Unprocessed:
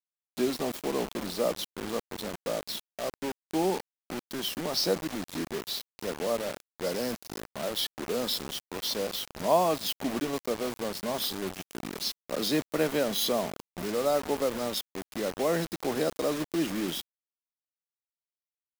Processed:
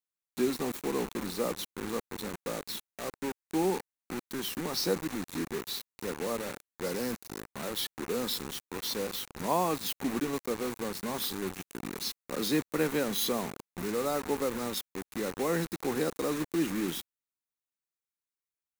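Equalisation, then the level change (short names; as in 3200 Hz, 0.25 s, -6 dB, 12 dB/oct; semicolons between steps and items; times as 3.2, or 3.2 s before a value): thirty-one-band EQ 630 Hz -12 dB, 3150 Hz -6 dB, 5000 Hz -6 dB; 0.0 dB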